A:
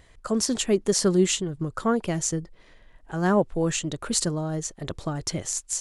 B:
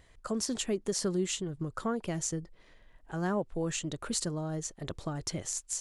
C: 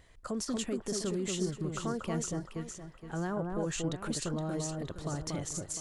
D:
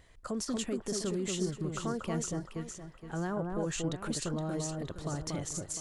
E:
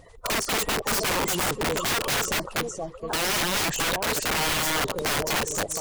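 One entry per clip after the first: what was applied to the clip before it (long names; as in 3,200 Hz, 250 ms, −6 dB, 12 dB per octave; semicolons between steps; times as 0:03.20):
downward compressor 2 to 1, threshold −25 dBFS, peak gain reduction 6 dB; level −5.5 dB
brickwall limiter −27 dBFS, peak gain reduction 11 dB; on a send: delay that swaps between a low-pass and a high-pass 234 ms, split 1,400 Hz, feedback 59%, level −3 dB
no processing that can be heard
spectral magnitudes quantised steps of 30 dB; flat-topped bell 690 Hz +11 dB; wrap-around overflow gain 28 dB; level +8 dB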